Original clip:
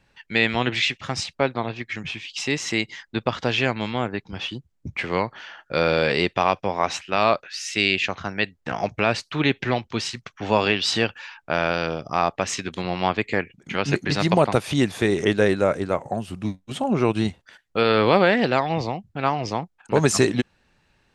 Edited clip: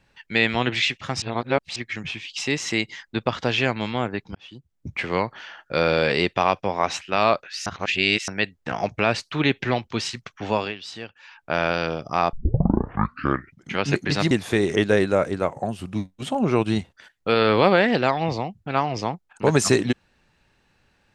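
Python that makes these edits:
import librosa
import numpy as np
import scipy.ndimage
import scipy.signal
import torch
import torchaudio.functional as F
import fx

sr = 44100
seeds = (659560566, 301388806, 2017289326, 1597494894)

y = fx.edit(x, sr, fx.reverse_span(start_s=1.22, length_s=0.54),
    fx.fade_in_span(start_s=4.35, length_s=0.58),
    fx.reverse_span(start_s=7.66, length_s=0.62),
    fx.fade_down_up(start_s=10.27, length_s=1.39, db=-14.5, fade_s=0.48, curve='qsin'),
    fx.tape_start(start_s=12.33, length_s=1.4),
    fx.cut(start_s=14.31, length_s=0.49), tone=tone)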